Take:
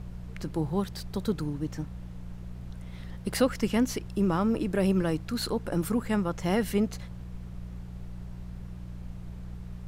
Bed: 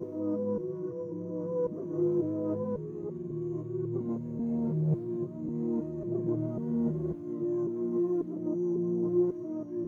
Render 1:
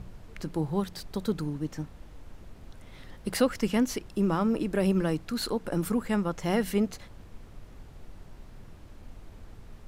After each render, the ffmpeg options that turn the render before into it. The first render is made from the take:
-af "bandreject=f=60:t=h:w=4,bandreject=f=120:t=h:w=4,bandreject=f=180:t=h:w=4"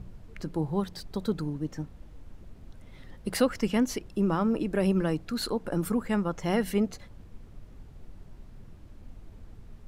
-af "afftdn=nr=6:nf=-49"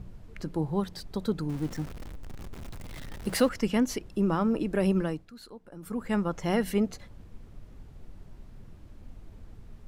-filter_complex "[0:a]asettb=1/sr,asplit=3[a][b][c];[a]atrim=end=1.494[d];[b]atrim=start=1.49:end=3.49,asetpts=PTS-STARTPTS,afade=t=in:d=0.004:c=qsin,afade=t=out:st=1.996:d=0.004:c=qsin,aeval=exprs='val(0)+0.5*0.0126*sgn(val(0))':c=same[e];[c]atrim=start=3.486[f];[d][e]acrossfade=d=0.004:c1=hsin:c2=qsin[g];[g][f]acrossfade=d=0.004:c1=qsin:c2=hsin,asplit=3[h][i][j];[h]atrim=end=5.31,asetpts=PTS-STARTPTS,afade=t=out:st=4.96:d=0.35:silence=0.149624[k];[i]atrim=start=5.31:end=5.8,asetpts=PTS-STARTPTS,volume=-16.5dB[l];[j]atrim=start=5.8,asetpts=PTS-STARTPTS,afade=t=in:d=0.35:silence=0.149624[m];[k][l][m]concat=n=3:v=0:a=1"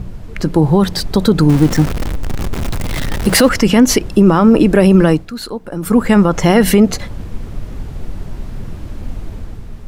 -af "dynaudnorm=f=100:g=11:m=5dB,alimiter=level_in=17dB:limit=-1dB:release=50:level=0:latency=1"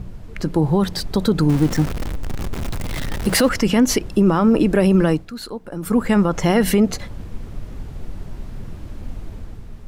-af "volume=-6dB"

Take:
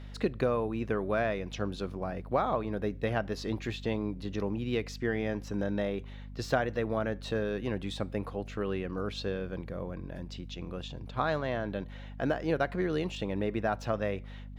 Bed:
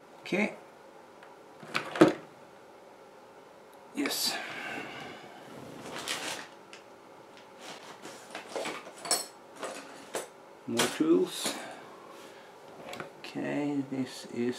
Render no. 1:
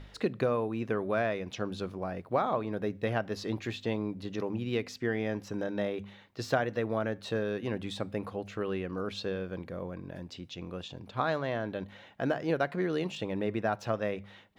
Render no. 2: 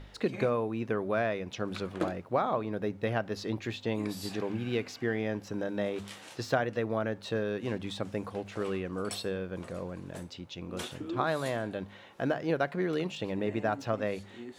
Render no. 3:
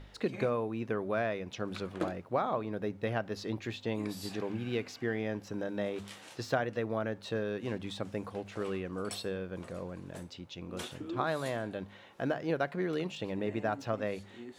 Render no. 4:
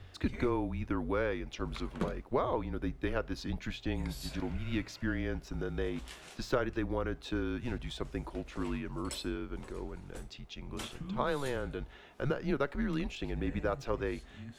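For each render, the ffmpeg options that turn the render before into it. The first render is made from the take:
-af "bandreject=f=50:t=h:w=4,bandreject=f=100:t=h:w=4,bandreject=f=150:t=h:w=4,bandreject=f=200:t=h:w=4,bandreject=f=250:t=h:w=4"
-filter_complex "[1:a]volume=-13dB[a];[0:a][a]amix=inputs=2:normalize=0"
-af "volume=-2.5dB"
-af "afreqshift=-140"

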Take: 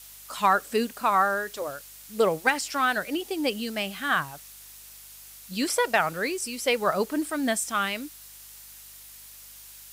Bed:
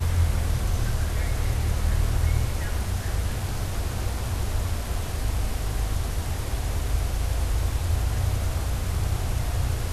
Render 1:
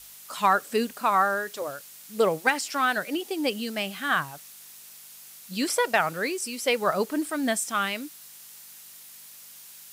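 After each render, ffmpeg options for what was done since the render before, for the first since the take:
-af "bandreject=f=50:t=h:w=4,bandreject=f=100:t=h:w=4"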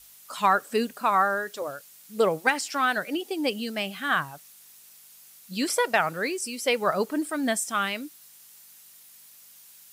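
-af "afftdn=nr=6:nf=-47"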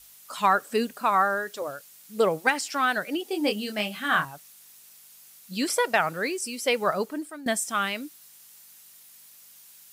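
-filter_complex "[0:a]asettb=1/sr,asplit=3[a][b][c];[a]atrim=end=3.294[d];[b]atrim=start=3.29:end=4.25,asetpts=PTS-STARTPTS,afade=t=in:d=0.004:c=qsin,afade=t=out:st=0.956:d=0.004:c=qsin,asplit=2[e][f];[f]adelay=24,volume=-5dB[g];[e][g]amix=inputs=2:normalize=0,atrim=end_sample=42336[h];[c]atrim=start=4.246[i];[d][h]acrossfade=d=0.004:c1=hsin:c2=qsin[j];[j][i]acrossfade=d=0.004:c1=qsin:c2=hsin,asplit=2[k][l];[k]atrim=end=7.46,asetpts=PTS-STARTPTS,afade=t=out:st=6.86:d=0.6:silence=0.149624[m];[l]atrim=start=7.46,asetpts=PTS-STARTPTS,afade=t=in:d=0.004:c=hsin:silence=0.149624[n];[m][n]concat=n=2:v=0:a=1"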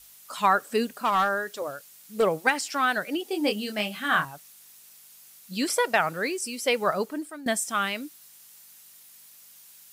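-filter_complex "[0:a]asettb=1/sr,asplit=3[a][b][c];[a]atrim=end=0.944[d];[b]atrim=start=0.94:end=2.23,asetpts=PTS-STARTPTS,afade=t=in:d=0.004:c=qsin,afade=t=out:st=1.286:d=0.004:c=qsin,asoftclip=type=hard:threshold=-17dB[e];[c]atrim=start=2.226[f];[d][e]acrossfade=d=0.004:c1=hsin:c2=qsin[g];[g][f]acrossfade=d=0.004:c1=qsin:c2=hsin"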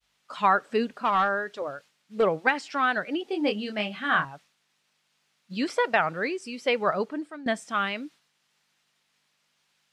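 -af "agate=range=-33dB:threshold=-44dB:ratio=3:detection=peak,lowpass=3.4k"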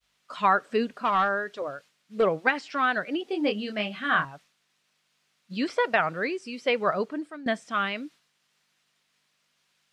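-filter_complex "[0:a]acrossover=split=5700[a][b];[b]acompressor=threshold=-56dB:ratio=4:attack=1:release=60[c];[a][c]amix=inputs=2:normalize=0,bandreject=f=850:w=12"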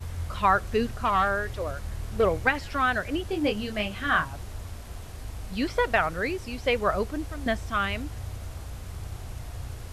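-filter_complex "[1:a]volume=-11.5dB[a];[0:a][a]amix=inputs=2:normalize=0"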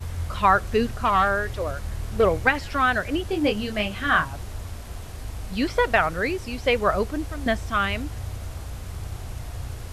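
-af "volume=3.5dB"

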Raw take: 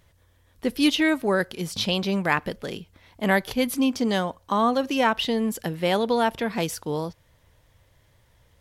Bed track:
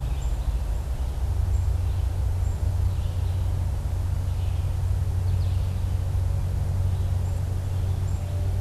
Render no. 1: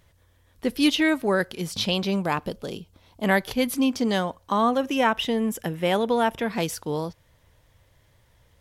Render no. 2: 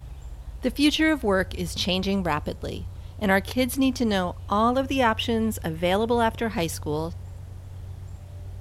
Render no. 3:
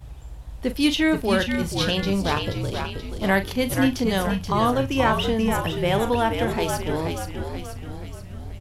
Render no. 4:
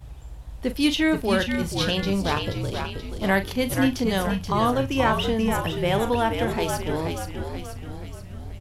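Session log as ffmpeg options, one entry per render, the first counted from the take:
-filter_complex "[0:a]asettb=1/sr,asplit=3[a][b][c];[a]atrim=end=2.164[d];[b]atrim=start=2.16:end=3.24,asetpts=PTS-STARTPTS,afade=t=in:d=0.004:c=qsin,afade=t=out:st=1.076:d=0.004:c=qsin,equalizer=f=1.9k:t=o:w=0.7:g=-11[e];[c]atrim=start=3.236[f];[d][e]acrossfade=d=0.004:c1=hsin:c2=qsin[g];[g][f]acrossfade=d=0.004:c1=qsin:c2=hsin,asettb=1/sr,asplit=3[h][i][j];[h]atrim=end=4.694[k];[i]atrim=start=4.69:end=6.43,asetpts=PTS-STARTPTS,afade=t=in:d=0.004:c=qsin,afade=t=out:st=1.736:d=0.004:c=qsin,equalizer=f=4.4k:t=o:w=0.2:g=-14.5[l];[j]atrim=start=6.426[m];[k][l]acrossfade=d=0.004:c1=hsin:c2=qsin[n];[n][m]acrossfade=d=0.004:c1=qsin:c2=hsin"
-filter_complex "[1:a]volume=-12.5dB[a];[0:a][a]amix=inputs=2:normalize=0"
-filter_complex "[0:a]asplit=2[a][b];[b]adelay=41,volume=-11.5dB[c];[a][c]amix=inputs=2:normalize=0,asplit=8[d][e][f][g][h][i][j][k];[e]adelay=480,afreqshift=-71,volume=-5.5dB[l];[f]adelay=960,afreqshift=-142,volume=-11.2dB[m];[g]adelay=1440,afreqshift=-213,volume=-16.9dB[n];[h]adelay=1920,afreqshift=-284,volume=-22.5dB[o];[i]adelay=2400,afreqshift=-355,volume=-28.2dB[p];[j]adelay=2880,afreqshift=-426,volume=-33.9dB[q];[k]adelay=3360,afreqshift=-497,volume=-39.6dB[r];[d][l][m][n][o][p][q][r]amix=inputs=8:normalize=0"
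-af "volume=-1dB"

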